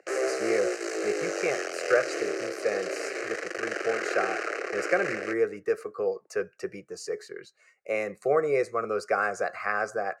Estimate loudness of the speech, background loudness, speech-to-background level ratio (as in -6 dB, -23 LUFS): -30.5 LUFS, -31.5 LUFS, 1.0 dB